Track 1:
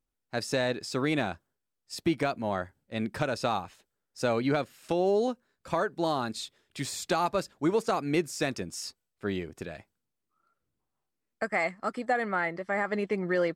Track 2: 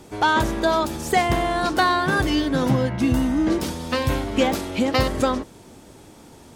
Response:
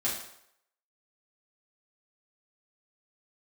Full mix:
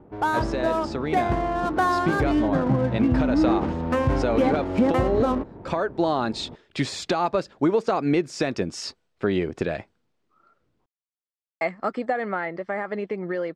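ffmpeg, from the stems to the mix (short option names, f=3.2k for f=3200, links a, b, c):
-filter_complex "[0:a]lowpass=4.5k,equalizer=f=480:w=0.56:g=4.5,acompressor=threshold=-27dB:ratio=2.5,volume=0dB,asplit=3[a][b][c];[a]atrim=end=10.86,asetpts=PTS-STARTPTS,afade=t=out:st=10.856:d=0.004:c=hsin[d];[b]atrim=start=10.86:end=11.61,asetpts=PTS-STARTPTS,volume=0[e];[c]atrim=start=11.61,asetpts=PTS-STARTPTS,afade=t=in:d=0.004:c=hsin[f];[d][e][f]concat=n=3:v=0:a=1[g];[1:a]lowpass=1.5k,adynamicsmooth=sensitivity=7:basefreq=1.1k,volume=-3.5dB[h];[g][h]amix=inputs=2:normalize=0,dynaudnorm=f=270:g=21:m=14dB,alimiter=limit=-11.5dB:level=0:latency=1:release=428"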